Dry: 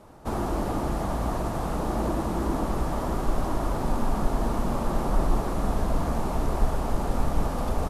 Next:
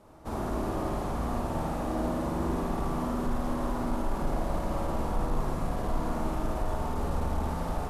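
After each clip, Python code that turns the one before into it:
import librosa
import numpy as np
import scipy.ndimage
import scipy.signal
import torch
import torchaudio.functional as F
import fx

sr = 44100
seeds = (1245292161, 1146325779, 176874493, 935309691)

y = 10.0 ** (-17.5 / 20.0) * np.tanh(x / 10.0 ** (-17.5 / 20.0))
y = fx.room_flutter(y, sr, wall_m=9.2, rt60_s=0.61)
y = fx.rev_spring(y, sr, rt60_s=3.1, pass_ms=(41,), chirp_ms=25, drr_db=1.5)
y = y * 10.0 ** (-6.0 / 20.0)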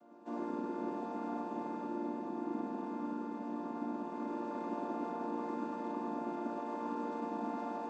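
y = fx.chord_vocoder(x, sr, chord='major triad', root=58)
y = fx.rider(y, sr, range_db=4, speed_s=0.5)
y = fx.echo_filtered(y, sr, ms=101, feedback_pct=61, hz=4600.0, wet_db=-4)
y = y * 10.0 ** (-4.5 / 20.0)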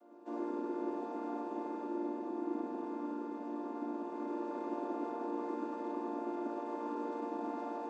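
y = fx.ladder_highpass(x, sr, hz=270.0, resonance_pct=40)
y = y * 10.0 ** (6.0 / 20.0)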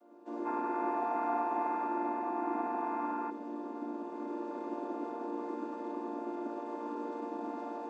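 y = fx.spec_box(x, sr, start_s=0.46, length_s=2.84, low_hz=630.0, high_hz=2700.0, gain_db=12)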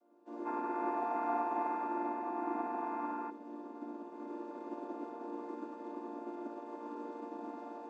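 y = fx.upward_expand(x, sr, threshold_db=-48.0, expansion=1.5)
y = y * 10.0 ** (-1.0 / 20.0)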